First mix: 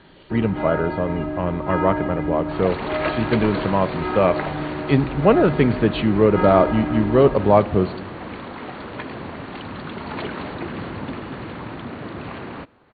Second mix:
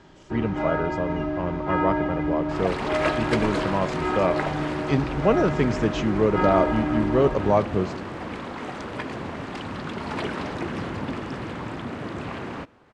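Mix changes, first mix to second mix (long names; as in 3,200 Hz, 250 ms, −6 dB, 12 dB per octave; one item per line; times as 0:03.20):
speech −5.5 dB
master: remove linear-phase brick-wall low-pass 4,600 Hz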